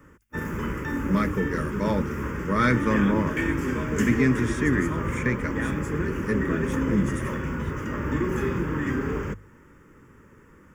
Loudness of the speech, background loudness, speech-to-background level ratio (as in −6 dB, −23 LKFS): −26.5 LKFS, −28.5 LKFS, 2.0 dB